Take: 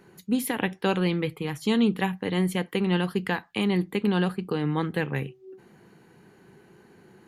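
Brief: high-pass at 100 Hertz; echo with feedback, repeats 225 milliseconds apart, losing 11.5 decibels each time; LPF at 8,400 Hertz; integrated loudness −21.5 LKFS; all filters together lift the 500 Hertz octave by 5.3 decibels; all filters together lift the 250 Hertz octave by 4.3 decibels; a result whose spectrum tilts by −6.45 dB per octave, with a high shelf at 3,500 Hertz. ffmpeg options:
ffmpeg -i in.wav -af "highpass=100,lowpass=8400,equalizer=frequency=250:width_type=o:gain=5,equalizer=frequency=500:width_type=o:gain=5,highshelf=frequency=3500:gain=-4.5,aecho=1:1:225|450|675:0.266|0.0718|0.0194,volume=1.5dB" out.wav

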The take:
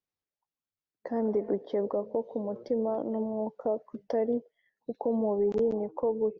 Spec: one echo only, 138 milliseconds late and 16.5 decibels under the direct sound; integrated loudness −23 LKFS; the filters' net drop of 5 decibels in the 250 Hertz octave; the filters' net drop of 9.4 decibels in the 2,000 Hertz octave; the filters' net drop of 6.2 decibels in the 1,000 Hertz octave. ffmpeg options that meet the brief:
ffmpeg -i in.wav -af "equalizer=frequency=250:width_type=o:gain=-5.5,equalizer=frequency=1000:width_type=o:gain=-7.5,equalizer=frequency=2000:width_type=o:gain=-8.5,aecho=1:1:138:0.15,volume=11dB" out.wav

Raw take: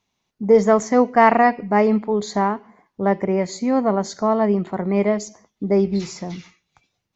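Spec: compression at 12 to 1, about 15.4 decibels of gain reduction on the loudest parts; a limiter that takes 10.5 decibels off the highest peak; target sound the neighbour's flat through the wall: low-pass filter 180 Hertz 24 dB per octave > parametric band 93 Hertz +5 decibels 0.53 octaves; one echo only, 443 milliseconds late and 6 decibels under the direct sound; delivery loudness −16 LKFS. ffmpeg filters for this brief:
ffmpeg -i in.wav -af "acompressor=threshold=-24dB:ratio=12,alimiter=level_in=0.5dB:limit=-24dB:level=0:latency=1,volume=-0.5dB,lowpass=frequency=180:width=0.5412,lowpass=frequency=180:width=1.3066,equalizer=frequency=93:width_type=o:width=0.53:gain=5,aecho=1:1:443:0.501,volume=26.5dB" out.wav

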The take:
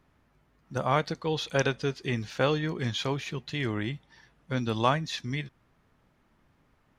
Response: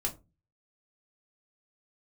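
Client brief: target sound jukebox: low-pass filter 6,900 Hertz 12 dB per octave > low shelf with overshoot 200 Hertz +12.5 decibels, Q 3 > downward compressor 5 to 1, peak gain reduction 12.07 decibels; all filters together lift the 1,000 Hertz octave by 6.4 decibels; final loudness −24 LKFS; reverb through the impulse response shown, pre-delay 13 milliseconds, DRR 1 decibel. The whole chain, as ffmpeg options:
-filter_complex "[0:a]equalizer=frequency=1000:width_type=o:gain=8.5,asplit=2[link_01][link_02];[1:a]atrim=start_sample=2205,adelay=13[link_03];[link_02][link_03]afir=irnorm=-1:irlink=0,volume=-4dB[link_04];[link_01][link_04]amix=inputs=2:normalize=0,lowpass=6900,lowshelf=frequency=200:width_type=q:width=3:gain=12.5,acompressor=threshold=-18dB:ratio=5,volume=-2dB"

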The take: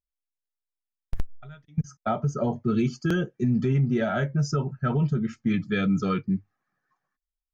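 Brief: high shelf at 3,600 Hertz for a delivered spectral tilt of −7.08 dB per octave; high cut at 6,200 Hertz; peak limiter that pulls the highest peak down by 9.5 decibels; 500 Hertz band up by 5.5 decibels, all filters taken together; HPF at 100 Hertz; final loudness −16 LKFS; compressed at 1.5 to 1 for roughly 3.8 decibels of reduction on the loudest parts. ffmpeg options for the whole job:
ffmpeg -i in.wav -af "highpass=100,lowpass=6200,equalizer=frequency=500:width_type=o:gain=7.5,highshelf=frequency=3600:gain=-5.5,acompressor=threshold=-28dB:ratio=1.5,volume=16.5dB,alimiter=limit=-7dB:level=0:latency=1" out.wav

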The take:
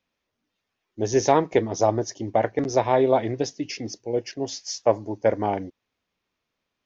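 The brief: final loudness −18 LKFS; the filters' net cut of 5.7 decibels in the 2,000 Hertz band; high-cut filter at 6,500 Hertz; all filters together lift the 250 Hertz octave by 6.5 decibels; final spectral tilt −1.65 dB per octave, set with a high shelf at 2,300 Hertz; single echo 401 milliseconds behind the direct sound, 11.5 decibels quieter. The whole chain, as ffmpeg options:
ffmpeg -i in.wav -af "lowpass=6500,equalizer=frequency=250:width_type=o:gain=8.5,equalizer=frequency=2000:width_type=o:gain=-3,highshelf=frequency=2300:gain=-8.5,aecho=1:1:401:0.266,volume=4dB" out.wav

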